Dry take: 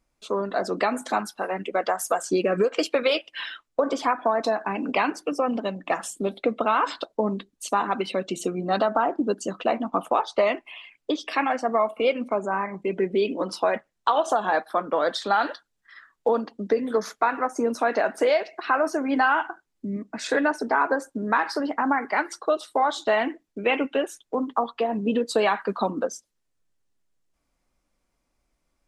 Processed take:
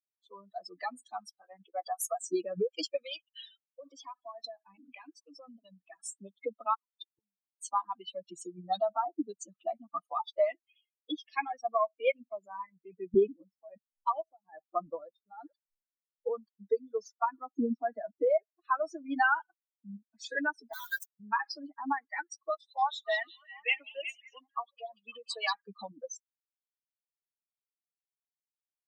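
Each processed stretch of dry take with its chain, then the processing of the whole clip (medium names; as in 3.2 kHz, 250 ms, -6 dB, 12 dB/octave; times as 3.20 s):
2.96–6.05 s: compression 2:1, threshold -26 dBFS + delay 925 ms -21 dB
6.74–7.54 s: bass shelf 300 Hz +10 dB + doubling 18 ms -13.5 dB + inverted gate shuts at -22 dBFS, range -25 dB
13.14–16.31 s: tilt EQ -3.5 dB/octave + tremolo 1.2 Hz, depth 78%
17.25–18.65 s: resonant high-pass 200 Hz, resonance Q 2.5 + tape spacing loss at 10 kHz 22 dB
20.73–21.20 s: high-pass 1.3 kHz + companded quantiser 2-bit
22.50–25.54 s: frequency weighting A + repeats whose band climbs or falls 184 ms, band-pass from 4.3 kHz, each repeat -0.7 oct, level 0 dB
whole clip: expander on every frequency bin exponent 3; bass shelf 320 Hz -7 dB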